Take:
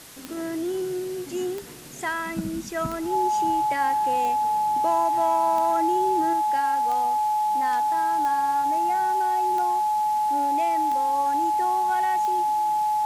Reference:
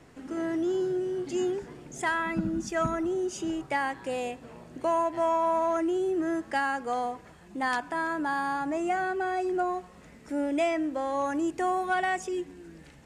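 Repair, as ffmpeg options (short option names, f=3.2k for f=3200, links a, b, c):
-af "adeclick=t=4,bandreject=f=850:w=30,afwtdn=0.0063,asetnsamples=n=441:p=0,asendcmd='6.33 volume volume 5dB',volume=0dB"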